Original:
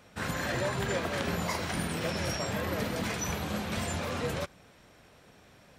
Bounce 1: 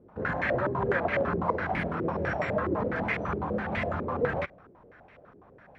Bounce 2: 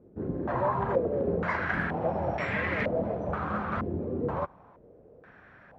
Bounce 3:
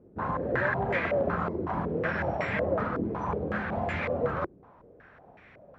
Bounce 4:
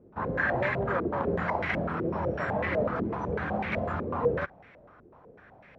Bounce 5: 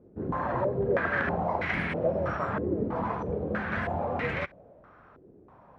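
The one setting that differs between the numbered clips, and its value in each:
low-pass on a step sequencer, speed: 12, 2.1, 5.4, 8, 3.1 Hertz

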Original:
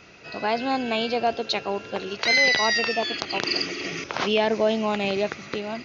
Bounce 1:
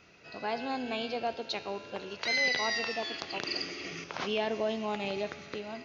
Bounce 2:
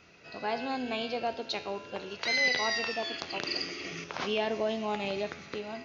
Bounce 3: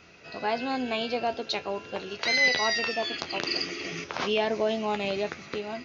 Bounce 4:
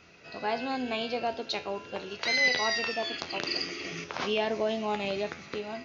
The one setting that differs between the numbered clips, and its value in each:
tuned comb filter, decay: 1.9, 0.85, 0.16, 0.38 seconds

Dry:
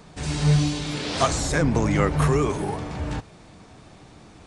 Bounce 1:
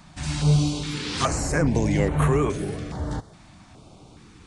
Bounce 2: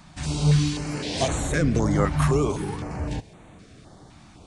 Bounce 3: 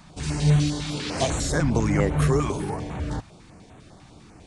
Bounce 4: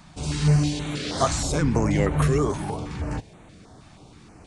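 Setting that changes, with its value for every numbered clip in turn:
notch on a step sequencer, speed: 2.4, 3.9, 10, 6.3 Hertz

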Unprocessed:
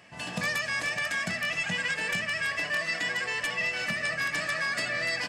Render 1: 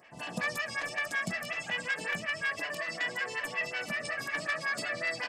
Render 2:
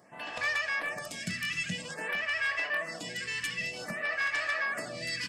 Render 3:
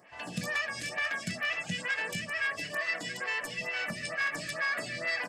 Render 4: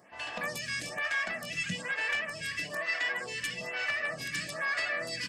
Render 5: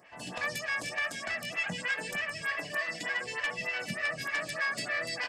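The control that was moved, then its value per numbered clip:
phaser with staggered stages, speed: 5.4, 0.52, 2.2, 1.1, 3.3 Hertz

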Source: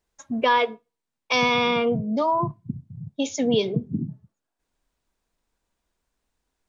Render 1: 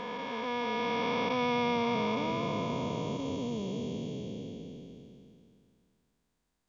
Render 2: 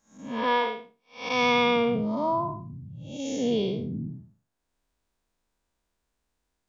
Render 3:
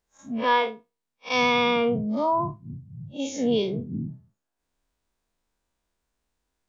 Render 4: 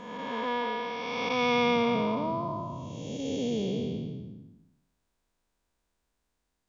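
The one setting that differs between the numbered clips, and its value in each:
spectrum smeared in time, width: 1,710, 225, 91, 643 milliseconds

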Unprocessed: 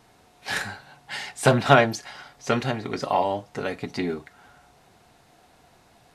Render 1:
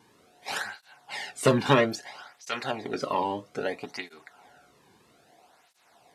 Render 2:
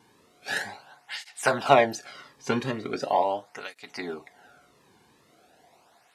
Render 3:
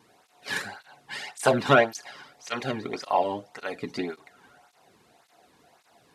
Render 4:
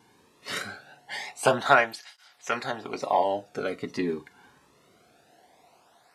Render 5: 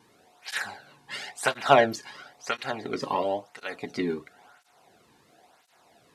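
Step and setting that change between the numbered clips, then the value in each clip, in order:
through-zero flanger with one copy inverted, nulls at: 0.61, 0.4, 1.8, 0.23, 0.97 Hertz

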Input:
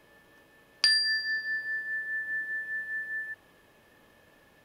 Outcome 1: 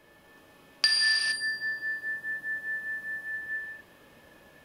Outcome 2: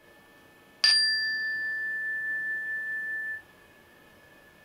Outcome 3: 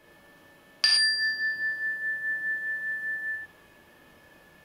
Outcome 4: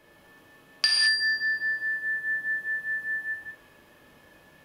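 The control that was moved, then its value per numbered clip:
reverb whose tail is shaped and stops, gate: 490, 90, 140, 240 milliseconds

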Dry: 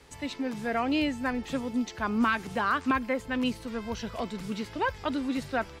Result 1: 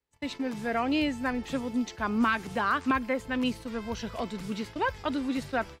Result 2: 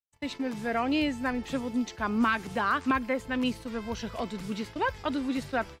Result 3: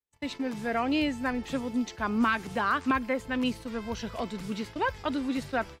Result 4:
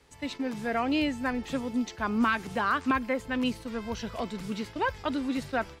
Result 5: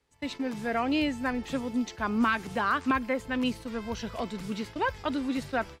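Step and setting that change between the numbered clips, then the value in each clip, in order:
noise gate, range: −33, −58, −45, −6, −20 decibels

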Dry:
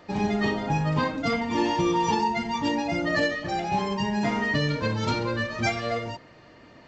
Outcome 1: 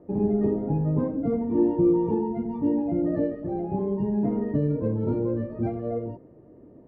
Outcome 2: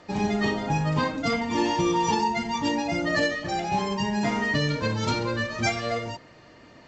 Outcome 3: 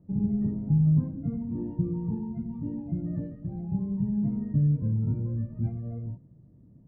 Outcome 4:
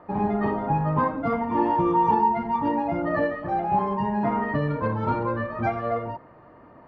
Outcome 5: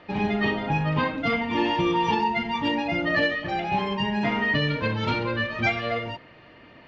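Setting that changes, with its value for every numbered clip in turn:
low-pass with resonance, frequency: 400, 7,900, 160, 1,100, 2,900 Hertz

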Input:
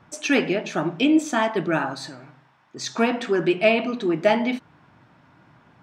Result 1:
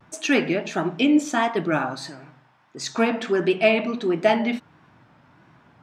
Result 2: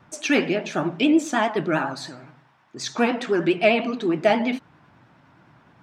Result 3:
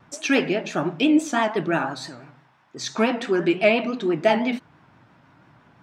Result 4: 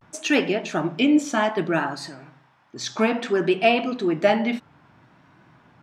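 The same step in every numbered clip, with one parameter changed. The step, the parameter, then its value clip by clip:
pitch vibrato, speed: 1.5, 9.7, 5.9, 0.61 Hertz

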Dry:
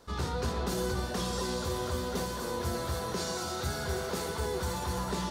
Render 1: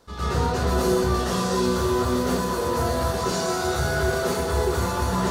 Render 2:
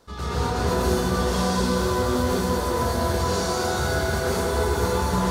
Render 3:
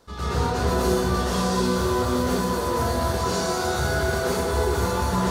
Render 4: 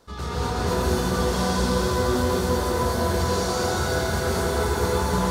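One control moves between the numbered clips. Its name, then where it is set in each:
dense smooth reverb, RT60: 0.5, 2.5, 1.1, 5.3 seconds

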